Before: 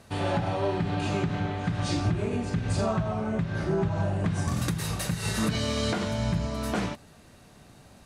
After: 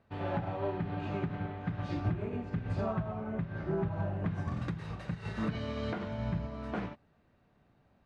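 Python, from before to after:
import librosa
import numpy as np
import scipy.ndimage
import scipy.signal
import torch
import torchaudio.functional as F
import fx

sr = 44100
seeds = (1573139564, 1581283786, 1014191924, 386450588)

y = scipy.signal.sosfilt(scipy.signal.butter(2, 2300.0, 'lowpass', fs=sr, output='sos'), x)
y = fx.upward_expand(y, sr, threshold_db=-42.0, expansion=1.5)
y = F.gain(torch.from_numpy(y), -4.5).numpy()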